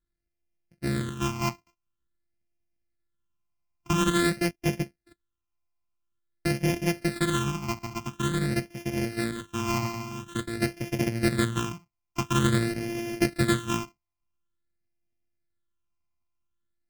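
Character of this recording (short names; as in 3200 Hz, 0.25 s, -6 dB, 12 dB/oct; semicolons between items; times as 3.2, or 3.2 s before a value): a buzz of ramps at a fixed pitch in blocks of 128 samples; phasing stages 8, 0.48 Hz, lowest notch 480–1200 Hz; AAC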